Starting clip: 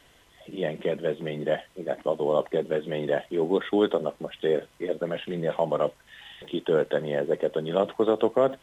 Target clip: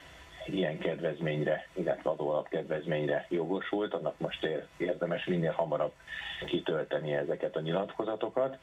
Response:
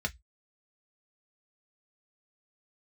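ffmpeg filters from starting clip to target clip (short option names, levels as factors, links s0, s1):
-filter_complex "[0:a]acompressor=threshold=0.0251:ratio=10,asplit=2[s0][s1];[1:a]atrim=start_sample=2205,highshelf=f=2100:g=7.5[s2];[s1][s2]afir=irnorm=-1:irlink=0,volume=0.596[s3];[s0][s3]amix=inputs=2:normalize=0,volume=1.19"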